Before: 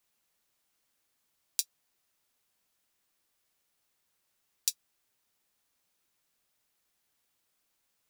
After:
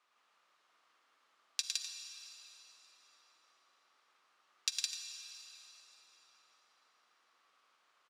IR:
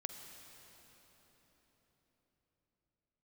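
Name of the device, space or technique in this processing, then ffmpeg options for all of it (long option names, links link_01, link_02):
station announcement: -filter_complex "[0:a]highpass=400,lowpass=3800,equalizer=frequency=1200:width_type=o:width=0.53:gain=11,aecho=1:1:107.9|163.3|253.6:0.631|0.794|0.251[link_01];[1:a]atrim=start_sample=2205[link_02];[link_01][link_02]afir=irnorm=-1:irlink=0,volume=7.5dB"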